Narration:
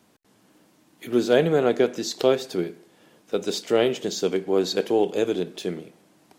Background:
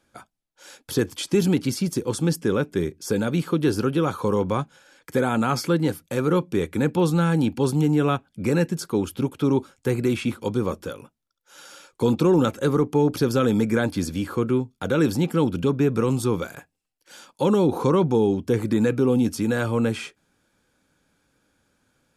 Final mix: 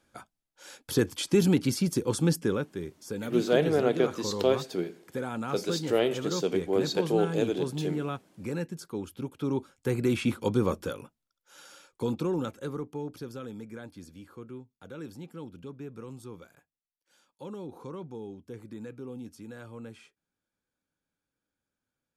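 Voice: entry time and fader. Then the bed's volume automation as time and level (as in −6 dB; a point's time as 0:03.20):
2.20 s, −5.0 dB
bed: 0:02.39 −2.5 dB
0:02.76 −12 dB
0:09.16 −12 dB
0:10.33 −1.5 dB
0:11.02 −1.5 dB
0:13.58 −21 dB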